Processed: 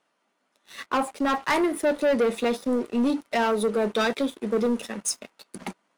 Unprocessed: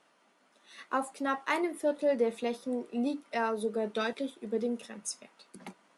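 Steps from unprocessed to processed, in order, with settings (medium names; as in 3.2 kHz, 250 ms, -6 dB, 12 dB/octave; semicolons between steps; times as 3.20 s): 0.86–1.43 s: treble shelf 3.7 kHz -7 dB; waveshaping leveller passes 3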